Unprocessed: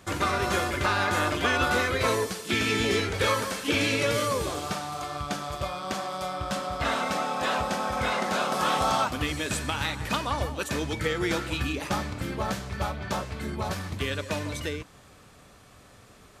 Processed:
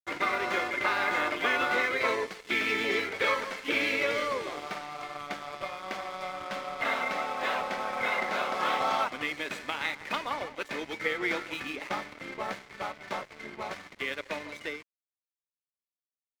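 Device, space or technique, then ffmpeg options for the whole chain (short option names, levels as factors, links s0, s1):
pocket radio on a weak battery: -af "highpass=310,lowpass=3800,aeval=exprs='sgn(val(0))*max(abs(val(0))-0.0075,0)':c=same,equalizer=f=2100:t=o:w=0.22:g=10,volume=0.794"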